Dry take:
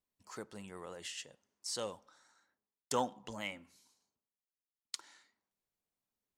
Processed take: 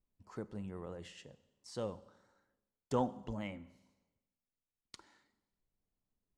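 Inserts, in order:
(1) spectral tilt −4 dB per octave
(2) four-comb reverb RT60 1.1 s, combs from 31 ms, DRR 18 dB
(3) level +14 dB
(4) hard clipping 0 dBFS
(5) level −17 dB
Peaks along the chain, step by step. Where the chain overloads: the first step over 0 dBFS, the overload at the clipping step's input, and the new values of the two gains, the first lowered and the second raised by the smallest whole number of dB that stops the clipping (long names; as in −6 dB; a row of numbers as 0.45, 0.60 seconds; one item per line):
−16.5, −16.5, −2.5, −2.5, −19.5 dBFS
no step passes full scale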